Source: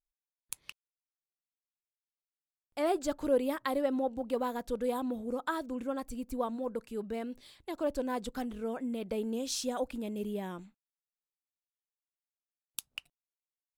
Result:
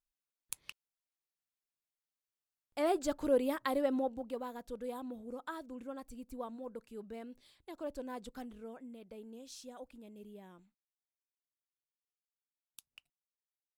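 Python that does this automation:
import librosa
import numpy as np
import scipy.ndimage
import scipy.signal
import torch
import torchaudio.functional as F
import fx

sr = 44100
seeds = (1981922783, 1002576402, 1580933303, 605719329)

y = fx.gain(x, sr, db=fx.line((3.98, -1.5), (4.41, -9.0), (8.43, -9.0), (9.05, -15.5)))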